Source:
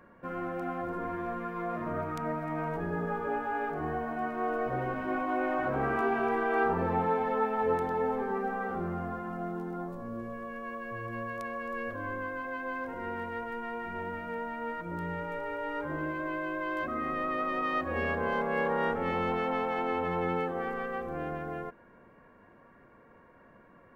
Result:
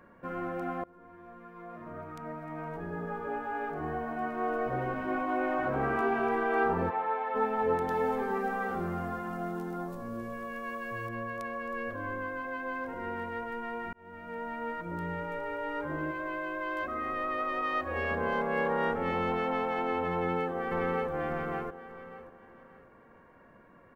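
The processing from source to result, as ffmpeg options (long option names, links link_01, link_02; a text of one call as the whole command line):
ffmpeg -i in.wav -filter_complex "[0:a]asplit=3[link_01][link_02][link_03];[link_01]afade=type=out:start_time=6.89:duration=0.02[link_04];[link_02]highpass=630,lowpass=3100,afade=type=in:start_time=6.89:duration=0.02,afade=type=out:start_time=7.34:duration=0.02[link_05];[link_03]afade=type=in:start_time=7.34:duration=0.02[link_06];[link_04][link_05][link_06]amix=inputs=3:normalize=0,asettb=1/sr,asplit=3[link_07][link_08][link_09];[link_07]atrim=end=7.884[link_10];[link_08]atrim=start=7.88:end=11.09,asetpts=PTS-STARTPTS,afade=type=in:duration=0.004:curve=qsin,afade=type=out:start_time=3.206:duration=0.004:curve=qsin,highshelf=frequency=2700:gain=10.5[link_11];[link_09]atrim=start=11.086[link_12];[link_10][link_11]acrossfade=duration=0.004:curve1=hsin:curve2=qsin[link_13];[link_13][link_12]acrossfade=duration=0.004:curve1=qsin:curve2=hsin,asettb=1/sr,asplit=3[link_14][link_15][link_16];[link_14]atrim=end=16.114[link_17];[link_15]atrim=start=16.11:end=18.11,asetpts=PTS-STARTPTS,afade=type=in:duration=0.004:curve=qsin,afade=type=out:start_time=1.996:duration=0.004:curve=qsin,equalizer=frequency=190:width=1.3:gain=-10[link_18];[link_16]atrim=start=18.106[link_19];[link_17][link_18]acrossfade=duration=0.004:curve1=hsin:curve2=qsin[link_20];[link_20][link_19]acrossfade=duration=0.004:curve1=qsin:curve2=hsin,asplit=2[link_21][link_22];[link_22]afade=type=in:start_time=20.12:duration=0.01,afade=type=out:start_time=21.11:duration=0.01,aecho=0:1:590|1180|1770|2360:0.749894|0.224968|0.0674905|0.0202471[link_23];[link_21][link_23]amix=inputs=2:normalize=0,asplit=3[link_24][link_25][link_26];[link_24]atrim=end=0.84,asetpts=PTS-STARTPTS,afade=type=out:start_time=0.836:duration=0.004:curve=hsin:silence=0.0707946[link_27];[link_25]atrim=start=0.84:end=13.93,asetpts=PTS-STARTPTS,afade=type=in:duration=3.62:silence=0.0707946,afade=type=out:start_time=13.086:duration=0.004:curve=hsin[link_28];[link_26]atrim=start=13.93,asetpts=PTS-STARTPTS,afade=type=in:duration=0.59[link_29];[link_27][link_28][link_29]concat=n=3:v=0:a=1" out.wav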